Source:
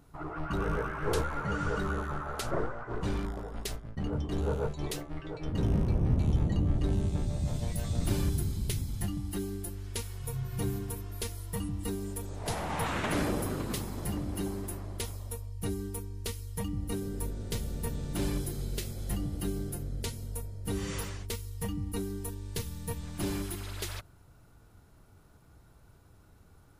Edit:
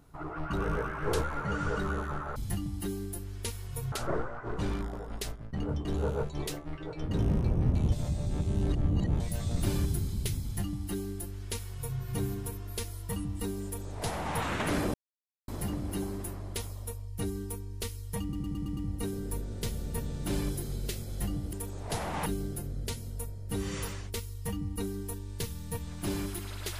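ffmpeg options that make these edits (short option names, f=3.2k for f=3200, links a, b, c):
-filter_complex "[0:a]asplit=14[a][b][c][d][e][f][g][h][i][j][k][l][m][n];[a]atrim=end=2.362[o];[b]atrim=start=8.868:end=10.432[p];[c]atrim=start=2.358:end=6.362[q];[d]atrim=start=6.358:end=7.642,asetpts=PTS-STARTPTS,areverse[r];[e]atrim=start=7.638:end=13.38,asetpts=PTS-STARTPTS,afade=t=out:st=5.738:d=0.004:c=hsin[s];[f]atrim=start=13.38:end=13.92,asetpts=PTS-STARTPTS,volume=0[t];[g]atrim=start=13.92:end=16.772,asetpts=PTS-STARTPTS,afade=t=in:d=0.004:c=hsin[u];[h]atrim=start=16.658:end=16.772[v];[i]atrim=start=16.658:end=16.772[w];[j]atrim=start=16.658:end=16.772[x];[k]atrim=start=16.658:end=16.772[y];[l]atrim=start=16.658:end=19.422[z];[m]atrim=start=12.088:end=12.822[aa];[n]atrim=start=19.418[ab];[o][p]acrossfade=d=0.004:c1=hsin:c2=hsin[ac];[ac][q]acrossfade=d=0.004:c1=hsin:c2=hsin[ad];[ad][r]acrossfade=d=0.004:c1=hsin:c2=hsin[ae];[s][t][u]concat=n=3:v=0:a=1[af];[ae][af]acrossfade=d=0.004:c1=hsin:c2=hsin[ag];[ag][v]acrossfade=d=0.004:c1=hsin:c2=hsin[ah];[ah][w]acrossfade=d=0.004:c1=hsin:c2=hsin[ai];[ai][x]acrossfade=d=0.004:c1=hsin:c2=hsin[aj];[aj][y]acrossfade=d=0.004:c1=hsin:c2=hsin[ak];[ak][z]acrossfade=d=0.004:c1=hsin:c2=hsin[al];[al][aa]acrossfade=d=0.004:c1=hsin:c2=hsin[am];[am][ab]acrossfade=d=0.004:c1=hsin:c2=hsin"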